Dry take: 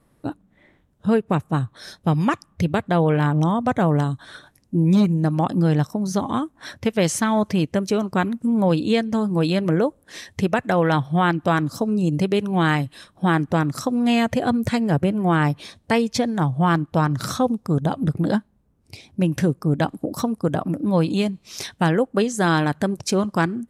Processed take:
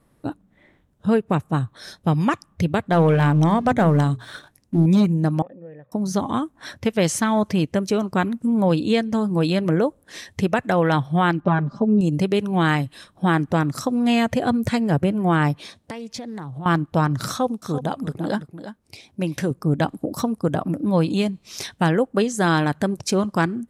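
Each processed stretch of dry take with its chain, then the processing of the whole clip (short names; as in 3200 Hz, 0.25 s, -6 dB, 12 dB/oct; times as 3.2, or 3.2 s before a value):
2.92–4.86 sample leveller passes 1 + notches 60/120/180/240/300/360/420 Hz
5.42–5.92 compressor 2.5:1, threshold -24 dBFS + vocal tract filter e + notches 60/120/180 Hz
11.4–12.01 tape spacing loss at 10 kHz 41 dB + comb 5 ms, depth 89%
15.55–16.66 HPF 130 Hz 6 dB/oct + compressor 8:1, threshold -29 dBFS + Doppler distortion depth 0.2 ms
17.28–19.51 low shelf 220 Hz -9 dB + echo 0.339 s -12 dB
whole clip: dry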